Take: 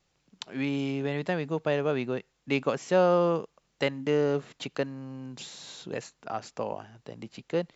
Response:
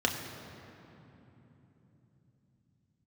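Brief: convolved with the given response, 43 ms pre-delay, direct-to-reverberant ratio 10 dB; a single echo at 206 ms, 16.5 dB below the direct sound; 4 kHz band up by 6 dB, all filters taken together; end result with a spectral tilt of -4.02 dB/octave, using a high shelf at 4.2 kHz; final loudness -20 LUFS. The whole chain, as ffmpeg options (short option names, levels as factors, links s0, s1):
-filter_complex "[0:a]equalizer=f=4000:t=o:g=5,highshelf=f=4200:g=5.5,aecho=1:1:206:0.15,asplit=2[s0][s1];[1:a]atrim=start_sample=2205,adelay=43[s2];[s1][s2]afir=irnorm=-1:irlink=0,volume=0.1[s3];[s0][s3]amix=inputs=2:normalize=0,volume=2.82"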